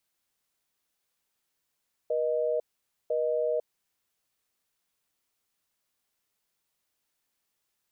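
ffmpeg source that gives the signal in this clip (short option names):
-f lavfi -i "aevalsrc='0.0422*(sin(2*PI*480*t)+sin(2*PI*620*t))*clip(min(mod(t,1),0.5-mod(t,1))/0.005,0,1)':d=1.68:s=44100"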